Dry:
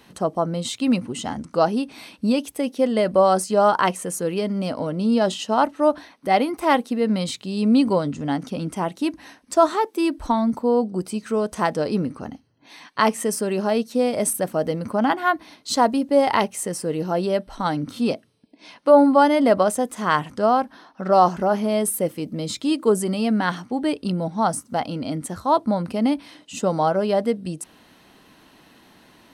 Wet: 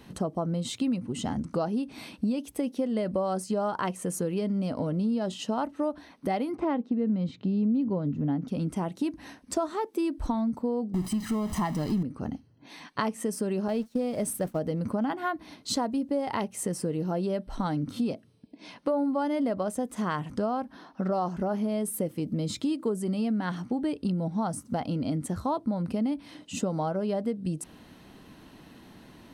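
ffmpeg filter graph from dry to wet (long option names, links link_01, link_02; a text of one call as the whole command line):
ffmpeg -i in.wav -filter_complex "[0:a]asettb=1/sr,asplit=3[link_01][link_02][link_03];[link_01]atrim=end=6.554[link_04];[link_02]atrim=start=6.55:end=8.48,asetpts=PTS-STARTPTS,afade=type=in:duration=0.004:curve=qsin,afade=type=out:start_time=1.926:duration=0.004:curve=qsin,highpass=180,lowpass=5400,aemphasis=mode=reproduction:type=riaa[link_05];[link_03]atrim=start=8.476[link_06];[link_04][link_05]acrossfade=duration=0.004:curve1=hsin:curve2=qsin[link_07];[link_07][link_06]acrossfade=duration=0.004:curve1=qsin:curve2=hsin,asettb=1/sr,asplit=3[link_08][link_09][link_10];[link_08]atrim=end=10.944[link_11];[link_09]atrim=start=10.94:end=12.03,asetpts=PTS-STARTPTS,afade=type=in:duration=0.004:curve=qsin,afade=type=out:start_time=1.086:duration=0.004:curve=qsin,aeval=exprs='val(0)+0.5*0.0422*sgn(val(0))':channel_layout=same,aecho=1:1:1:0.76,atrim=end_sample=48069[link_12];[link_10]atrim=start=12.026[link_13];[link_11][link_12]acrossfade=duration=0.004:curve1=hsin:curve2=qsin[link_14];[link_14][link_13]acrossfade=duration=0.004:curve1=qsin:curve2=hsin,asettb=1/sr,asplit=3[link_15][link_16][link_17];[link_15]atrim=end=13.684[link_18];[link_16]atrim=start=13.68:end=14.59,asetpts=PTS-STARTPTS,afade=type=in:duration=0.004:curve=qsin,afade=type=out:start_time=0.906:duration=0.004:curve=qsin,aeval=exprs='val(0)+0.5*0.0178*sgn(val(0))':channel_layout=same,agate=range=-33dB:threshold=-24dB:ratio=3:release=100:detection=peak[link_19];[link_17]atrim=start=14.586[link_20];[link_18][link_19]acrossfade=duration=0.004:curve1=hsin:curve2=qsin[link_21];[link_21][link_20]acrossfade=duration=0.004:curve1=qsin:curve2=hsin,lowshelf=frequency=350:gain=11,acompressor=threshold=-23dB:ratio=5,volume=-3.5dB" out.wav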